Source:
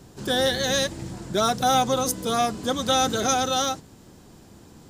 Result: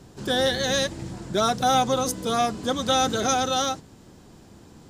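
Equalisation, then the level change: high shelf 11000 Hz -9 dB; 0.0 dB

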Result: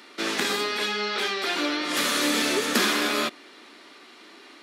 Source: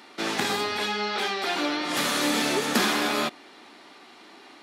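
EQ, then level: HPF 230 Hz 12 dB/oct; bell 800 Hz -8.5 dB 0.52 oct; +2.0 dB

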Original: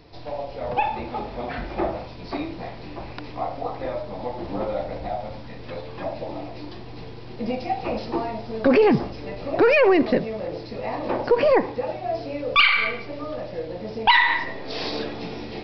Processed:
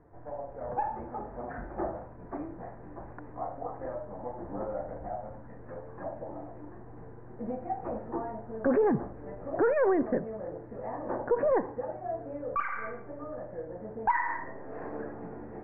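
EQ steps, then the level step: elliptic low-pass 1700 Hz, stop band 50 dB; -8.0 dB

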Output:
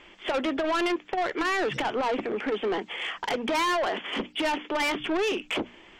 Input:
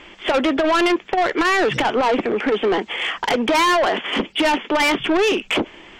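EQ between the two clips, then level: notches 60/120/180/240/300 Hz; -9.0 dB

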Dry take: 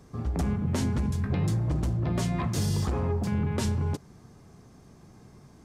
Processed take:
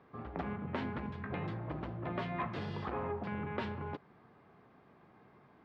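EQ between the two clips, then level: HPF 1100 Hz 6 dB/oct; LPF 3700 Hz 12 dB/oct; air absorption 450 m; +4.0 dB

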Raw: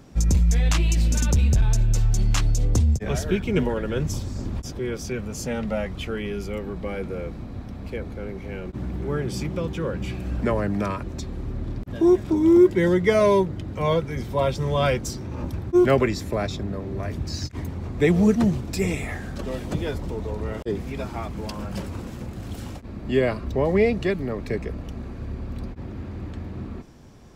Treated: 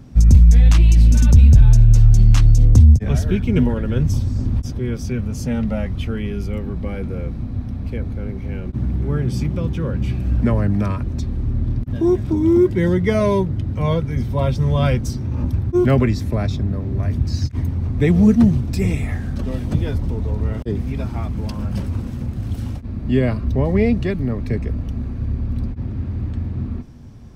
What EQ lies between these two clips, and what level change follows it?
resonant low shelf 160 Hz +9.5 dB, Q 1.5; bell 240 Hz +12.5 dB 0.56 oct; notch 7200 Hz, Q 10; -1.0 dB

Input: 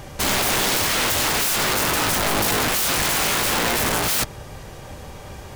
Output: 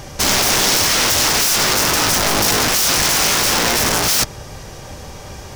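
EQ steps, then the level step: bell 5600 Hz +8 dB 0.62 oct; +3.5 dB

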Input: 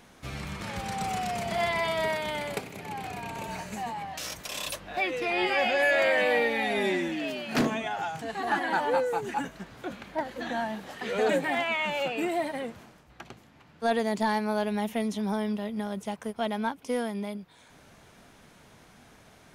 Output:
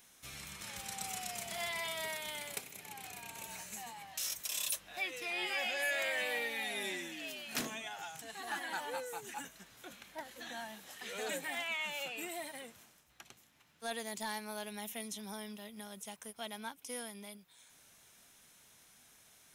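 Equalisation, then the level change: pre-emphasis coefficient 0.9; notch 4600 Hz, Q 12; +2.0 dB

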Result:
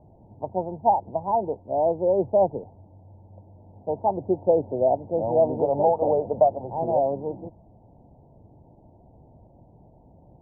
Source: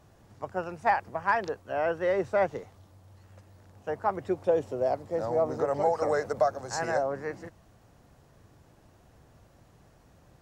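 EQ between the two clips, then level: rippled Chebyshev low-pass 940 Hz, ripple 3 dB; +7.5 dB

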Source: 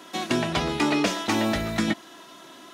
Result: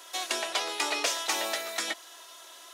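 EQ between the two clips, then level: HPF 460 Hz 24 dB/oct; high shelf 3900 Hz +10 dB; bell 8900 Hz +2.5 dB 1.6 oct; -5.5 dB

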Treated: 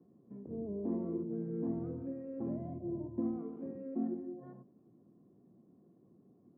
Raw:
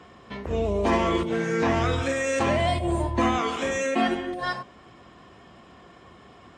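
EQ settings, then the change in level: HPF 150 Hz 12 dB/oct; Butterworth band-pass 190 Hz, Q 0.8; air absorption 420 m; -7.0 dB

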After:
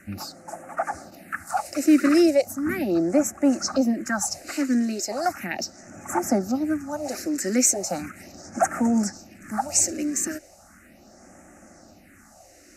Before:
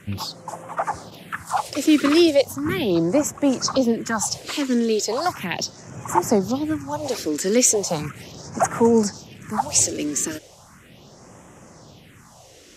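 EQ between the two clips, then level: fixed phaser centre 670 Hz, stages 8; 0.0 dB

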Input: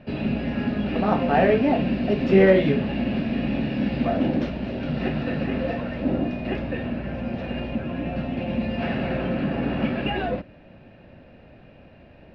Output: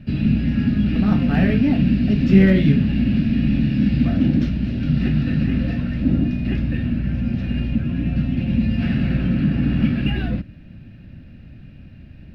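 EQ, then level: tone controls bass +13 dB, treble +8 dB; band shelf 660 Hz -10 dB; -1.0 dB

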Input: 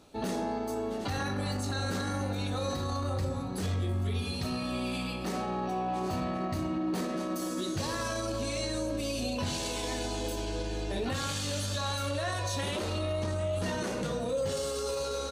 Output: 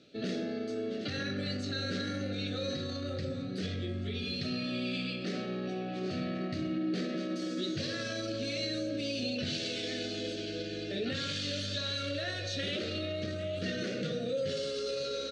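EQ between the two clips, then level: HPF 110 Hz 24 dB/oct; Butterworth band-stop 940 Hz, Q 1.1; ladder low-pass 5400 Hz, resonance 30%; +6.0 dB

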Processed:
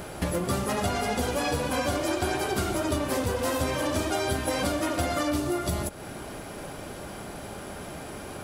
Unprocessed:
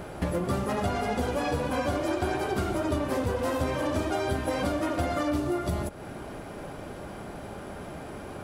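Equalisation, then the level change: high shelf 3000 Hz +10.5 dB; 0.0 dB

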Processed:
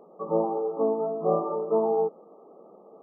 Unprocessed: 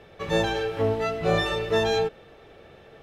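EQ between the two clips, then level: brick-wall FIR band-pass 170–1300 Hz; 0.0 dB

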